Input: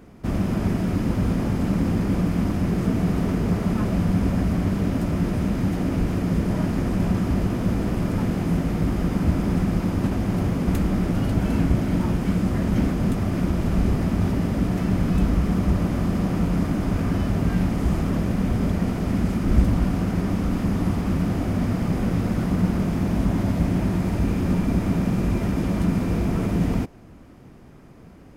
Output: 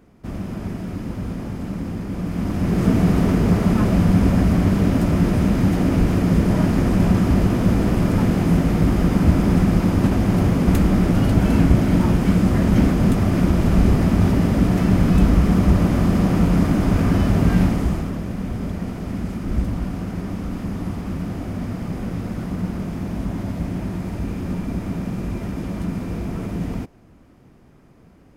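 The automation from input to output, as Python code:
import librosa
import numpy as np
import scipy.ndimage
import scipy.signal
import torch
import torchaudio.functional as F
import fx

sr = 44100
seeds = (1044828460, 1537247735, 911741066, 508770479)

y = fx.gain(x, sr, db=fx.line((2.11, -5.5), (2.88, 5.5), (17.64, 5.5), (18.16, -4.0)))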